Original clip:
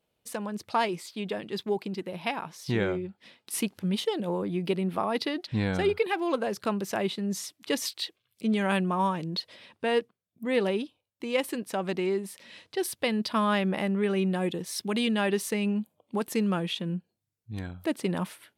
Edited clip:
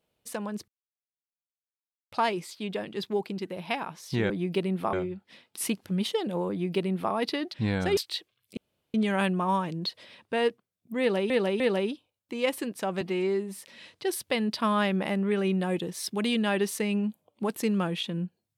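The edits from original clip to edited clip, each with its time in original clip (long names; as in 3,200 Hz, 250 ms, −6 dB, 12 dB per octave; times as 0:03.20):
0:00.68: splice in silence 1.44 s
0:04.43–0:05.06: duplicate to 0:02.86
0:05.90–0:07.85: remove
0:08.45: splice in room tone 0.37 s
0:10.51–0:10.81: repeat, 3 plays
0:11.92–0:12.30: time-stretch 1.5×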